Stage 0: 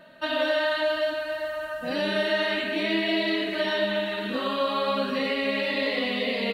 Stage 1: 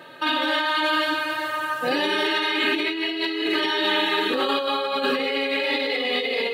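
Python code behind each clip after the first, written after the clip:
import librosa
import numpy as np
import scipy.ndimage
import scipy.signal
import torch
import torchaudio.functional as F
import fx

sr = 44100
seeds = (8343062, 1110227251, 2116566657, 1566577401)

y = x + 0.93 * np.pad(x, (int(2.4 * sr / 1000.0), 0))[:len(x)]
y = fx.over_compress(y, sr, threshold_db=-29.0, ratio=-1.0)
y = scipy.signal.sosfilt(scipy.signal.butter(4, 120.0, 'highpass', fs=sr, output='sos'), y)
y = F.gain(torch.from_numpy(y), 5.5).numpy()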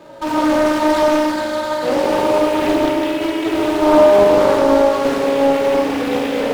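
y = scipy.ndimage.median_filter(x, 25, mode='constant')
y = fx.rev_fdn(y, sr, rt60_s=3.3, lf_ratio=1.0, hf_ratio=0.8, size_ms=10.0, drr_db=-5.0)
y = fx.doppler_dist(y, sr, depth_ms=0.44)
y = F.gain(torch.from_numpy(y), 3.5).numpy()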